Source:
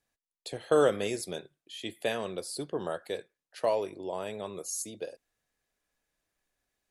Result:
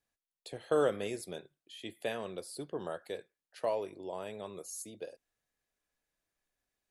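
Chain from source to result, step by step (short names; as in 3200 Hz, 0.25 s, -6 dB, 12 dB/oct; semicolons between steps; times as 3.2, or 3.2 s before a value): dynamic EQ 5900 Hz, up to -5 dB, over -50 dBFS, Q 0.95; gain -5 dB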